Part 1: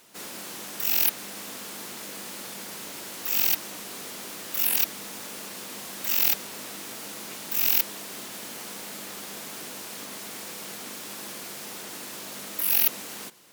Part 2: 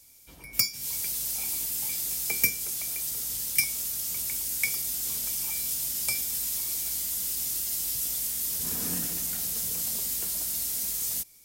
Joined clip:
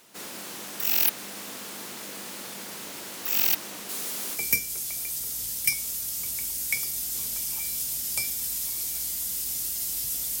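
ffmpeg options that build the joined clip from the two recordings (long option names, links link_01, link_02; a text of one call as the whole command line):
ffmpeg -i cue0.wav -i cue1.wav -filter_complex "[0:a]asettb=1/sr,asplit=3[link_01][link_02][link_03];[link_01]atrim=end=3.894[link_04];[link_02]atrim=start=3.89:end=4.41,asetpts=PTS-STARTPTS,afade=type=in:duration=0.004:curve=qsin,afade=type=out:start_time=0.516:duration=0.004:curve=qsin,aemphasis=mode=production:type=cd[link_05];[link_03]atrim=start=4.406[link_06];[link_04][link_05]acrossfade=duration=0.004:curve1=hsin:curve2=qsin[link_07];[link_07][link_06]acrossfade=duration=0.004:curve1=qsin:curve2=hsin,apad=whole_dur=10.4,atrim=end=10.4,atrim=end=4.41,asetpts=PTS-STARTPTS[link_08];[1:a]atrim=start=2.24:end=8.31,asetpts=PTS-STARTPTS[link_09];[link_08][link_09]acrossfade=duration=0.08:curve1=tri:curve2=tri" out.wav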